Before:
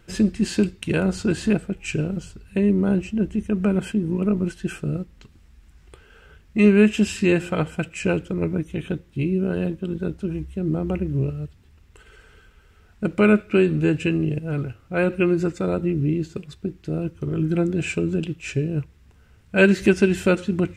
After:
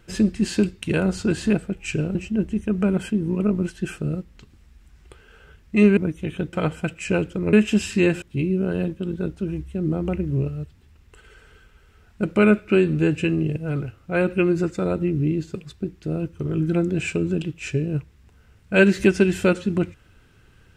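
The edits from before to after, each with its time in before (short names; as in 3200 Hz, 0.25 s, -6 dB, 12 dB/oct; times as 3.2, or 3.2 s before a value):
2.15–2.97 cut
6.79–7.48 swap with 8.48–9.04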